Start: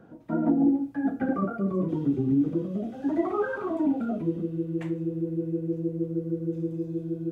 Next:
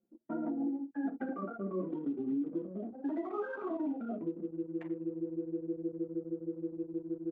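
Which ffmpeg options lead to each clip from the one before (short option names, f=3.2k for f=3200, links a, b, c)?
-af "highpass=f=220:w=0.5412,highpass=f=220:w=1.3066,anlmdn=1.58,alimiter=limit=-22dB:level=0:latency=1:release=331,volume=-5.5dB"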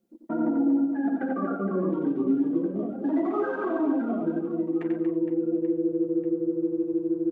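-af "aecho=1:1:90|234|464.4|833|1423:0.631|0.398|0.251|0.158|0.1,volume=8dB"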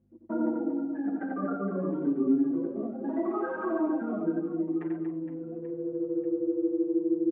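-filter_complex "[0:a]aeval=exprs='val(0)+0.00126*(sin(2*PI*50*n/s)+sin(2*PI*2*50*n/s)/2+sin(2*PI*3*50*n/s)/3+sin(2*PI*4*50*n/s)/4+sin(2*PI*5*50*n/s)/5)':c=same,highpass=120,lowpass=2k,asplit=2[a][b];[b]adelay=5.7,afreqshift=-0.31[c];[a][c]amix=inputs=2:normalize=1"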